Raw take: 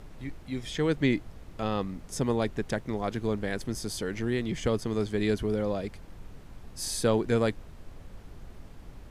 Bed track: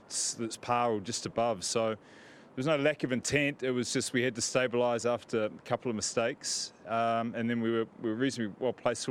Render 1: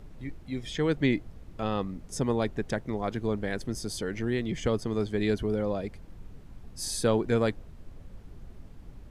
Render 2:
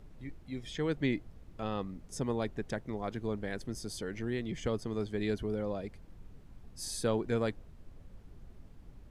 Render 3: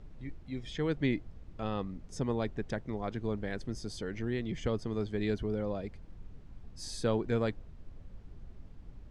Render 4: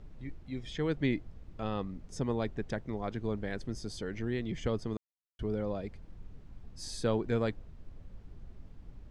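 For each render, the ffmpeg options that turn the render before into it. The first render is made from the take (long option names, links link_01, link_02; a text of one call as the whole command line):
ffmpeg -i in.wav -af "afftdn=noise_reduction=6:noise_floor=-48" out.wav
ffmpeg -i in.wav -af "volume=-6dB" out.wav
ffmpeg -i in.wav -af "lowpass=6500,lowshelf=frequency=140:gain=4" out.wav
ffmpeg -i in.wav -filter_complex "[0:a]asplit=3[link_01][link_02][link_03];[link_01]atrim=end=4.97,asetpts=PTS-STARTPTS,afade=type=out:start_time=4.966:duration=0.004:curve=hsin[link_04];[link_02]atrim=start=4.97:end=5.39,asetpts=PTS-STARTPTS,volume=0[link_05];[link_03]atrim=start=5.39,asetpts=PTS-STARTPTS,afade=type=in:duration=0.004:curve=hsin[link_06];[link_04][link_05][link_06]concat=n=3:v=0:a=1" out.wav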